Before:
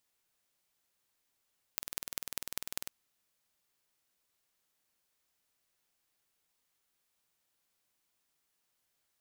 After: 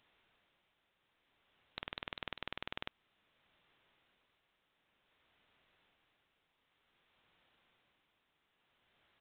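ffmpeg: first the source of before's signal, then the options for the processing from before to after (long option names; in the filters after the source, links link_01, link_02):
-f lavfi -i "aevalsrc='0.531*eq(mod(n,2194),0)*(0.5+0.5*eq(mod(n,8776),0))':duration=1.14:sample_rate=44100"
-af "tremolo=f=0.54:d=0.52,aresample=8000,aeval=exprs='0.0944*sin(PI/2*2.82*val(0)/0.0944)':channel_layout=same,aresample=44100"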